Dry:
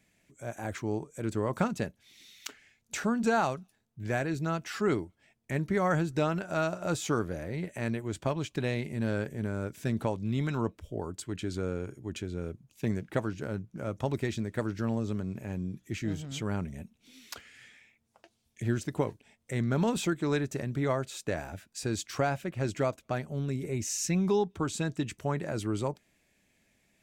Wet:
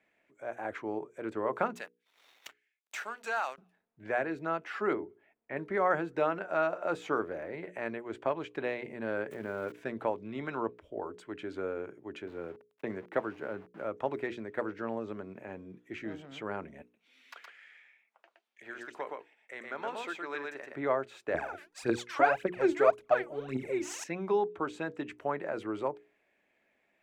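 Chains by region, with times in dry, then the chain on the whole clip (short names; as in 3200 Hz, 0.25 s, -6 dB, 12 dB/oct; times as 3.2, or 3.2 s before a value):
1.75–3.58 differentiator + sample leveller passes 3
4.93–5.57 air absorption 280 m + notches 50/100/150/200/250/300/350/400 Hz
9.31–9.72 switching spikes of -34 dBFS + fast leveller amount 50%
12.27–13.85 HPF 67 Hz 24 dB/oct + high shelf 5200 Hz -2 dB + sample gate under -48 dBFS
16.82–20.76 HPF 1400 Hz 6 dB/oct + echo 0.118 s -3 dB
21.34–24.04 LPF 11000 Hz + high shelf 6400 Hz +11.5 dB + phaser 1.8 Hz, delay 3.6 ms, feedback 78%
whole clip: three-band isolator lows -21 dB, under 310 Hz, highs -23 dB, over 2600 Hz; notches 60/120/180/240/300/360/420/480 Hz; gain +2 dB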